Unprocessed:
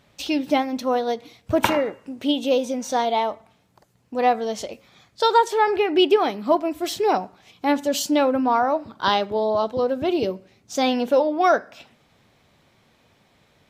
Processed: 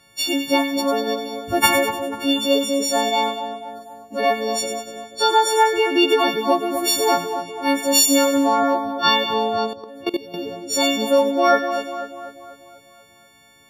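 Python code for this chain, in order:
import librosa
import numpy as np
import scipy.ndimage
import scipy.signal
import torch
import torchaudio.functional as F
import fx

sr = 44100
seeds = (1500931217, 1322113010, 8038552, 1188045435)

y = fx.freq_snap(x, sr, grid_st=4)
y = fx.echo_split(y, sr, split_hz=1500.0, low_ms=245, high_ms=98, feedback_pct=52, wet_db=-8)
y = fx.level_steps(y, sr, step_db=19, at=(9.73, 10.34))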